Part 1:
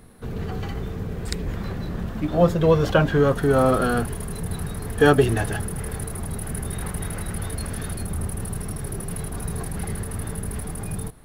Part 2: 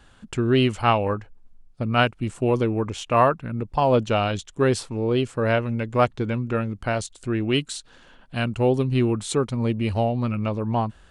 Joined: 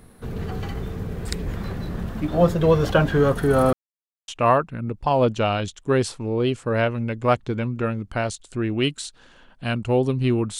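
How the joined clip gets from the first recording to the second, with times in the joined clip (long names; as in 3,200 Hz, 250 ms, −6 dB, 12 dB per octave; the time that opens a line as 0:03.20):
part 1
0:03.73–0:04.28: silence
0:04.28: continue with part 2 from 0:02.99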